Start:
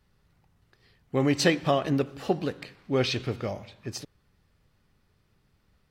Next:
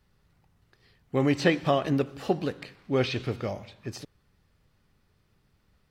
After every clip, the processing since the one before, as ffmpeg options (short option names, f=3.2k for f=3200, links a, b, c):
-filter_complex "[0:a]acrossover=split=3400[a][b];[b]acompressor=threshold=-40dB:ratio=4:attack=1:release=60[c];[a][c]amix=inputs=2:normalize=0"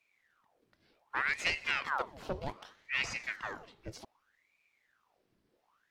-af "aeval=exprs='0.316*(cos(1*acos(clip(val(0)/0.316,-1,1)))-cos(1*PI/2))+0.0562*(cos(4*acos(clip(val(0)/0.316,-1,1)))-cos(4*PI/2))+0.0316*(cos(5*acos(clip(val(0)/0.316,-1,1)))-cos(5*PI/2))':c=same,aeval=exprs='val(0)*sin(2*PI*1300*n/s+1300*0.85/0.65*sin(2*PI*0.65*n/s))':c=same,volume=-9dB"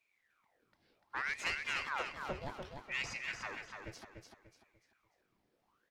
-filter_complex "[0:a]asoftclip=type=tanh:threshold=-23dB,asplit=2[a][b];[b]aecho=0:1:294|588|882|1176:0.531|0.186|0.065|0.0228[c];[a][c]amix=inputs=2:normalize=0,volume=-4dB"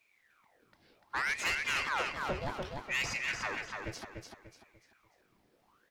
-af "asoftclip=type=tanh:threshold=-34.5dB,volume=8dB"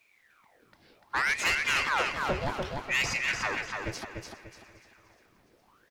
-af "aecho=1:1:410|820|1230|1640:0.0891|0.0481|0.026|0.014,volume=5.5dB"